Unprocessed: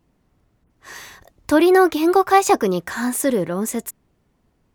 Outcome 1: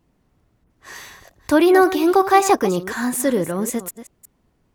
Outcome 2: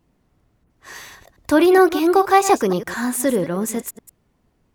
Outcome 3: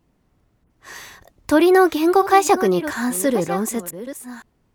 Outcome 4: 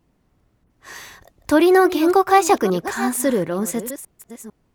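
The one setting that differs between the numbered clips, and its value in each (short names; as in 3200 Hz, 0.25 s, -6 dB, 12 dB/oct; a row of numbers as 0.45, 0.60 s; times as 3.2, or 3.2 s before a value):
reverse delay, time: 0.185, 0.105, 0.737, 0.45 s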